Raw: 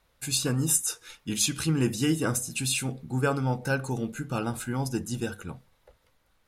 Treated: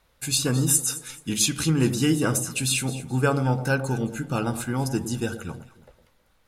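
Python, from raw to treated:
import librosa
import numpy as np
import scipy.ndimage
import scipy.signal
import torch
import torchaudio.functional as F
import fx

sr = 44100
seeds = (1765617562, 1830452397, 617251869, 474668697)

y = fx.echo_alternate(x, sr, ms=107, hz=850.0, feedback_pct=53, wet_db=-10.0)
y = F.gain(torch.from_numpy(y), 3.5).numpy()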